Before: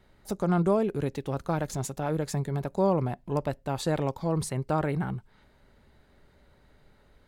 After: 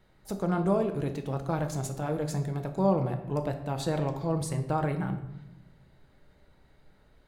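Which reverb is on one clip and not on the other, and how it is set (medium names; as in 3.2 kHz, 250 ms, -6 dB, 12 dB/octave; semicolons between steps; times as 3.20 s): simulated room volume 310 m³, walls mixed, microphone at 0.62 m; trim -3 dB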